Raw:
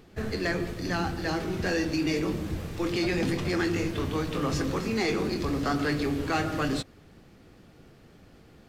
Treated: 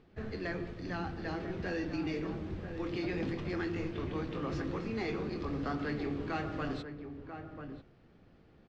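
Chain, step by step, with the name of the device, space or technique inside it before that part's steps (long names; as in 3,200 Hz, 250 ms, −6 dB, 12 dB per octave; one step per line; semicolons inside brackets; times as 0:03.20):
shout across a valley (high-frequency loss of the air 180 metres; slap from a distant wall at 170 metres, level −8 dB)
level −8 dB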